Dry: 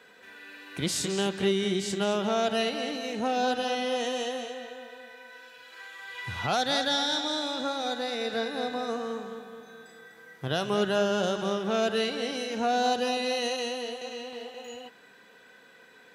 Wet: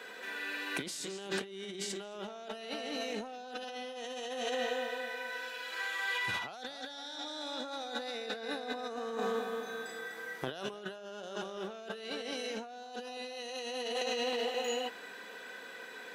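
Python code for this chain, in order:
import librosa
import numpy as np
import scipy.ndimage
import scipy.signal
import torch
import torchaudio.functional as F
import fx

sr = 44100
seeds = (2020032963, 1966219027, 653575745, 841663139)

y = scipy.signal.sosfilt(scipy.signal.butter(2, 270.0, 'highpass', fs=sr, output='sos'), x)
y = fx.over_compress(y, sr, threshold_db=-40.0, ratio=-1.0)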